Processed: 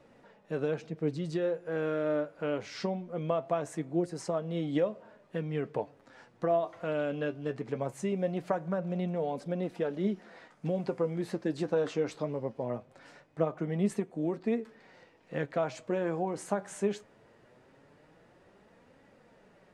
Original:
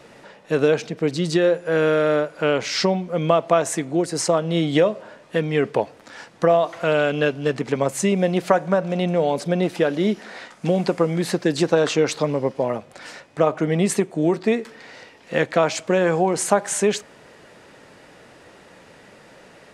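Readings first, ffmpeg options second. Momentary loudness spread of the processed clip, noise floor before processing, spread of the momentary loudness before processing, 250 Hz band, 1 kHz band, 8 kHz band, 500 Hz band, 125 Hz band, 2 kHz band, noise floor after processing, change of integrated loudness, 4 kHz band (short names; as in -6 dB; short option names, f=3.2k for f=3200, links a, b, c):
7 LU, -49 dBFS, 7 LU, -11.0 dB, -13.5 dB, -21.0 dB, -12.5 dB, -10.5 dB, -16.5 dB, -62 dBFS, -12.5 dB, -19.5 dB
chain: -af "highshelf=f=2k:g=-9.5,flanger=delay=3.5:depth=7.2:regen=60:speed=0.21:shape=triangular,lowshelf=f=140:g=5,volume=-8dB"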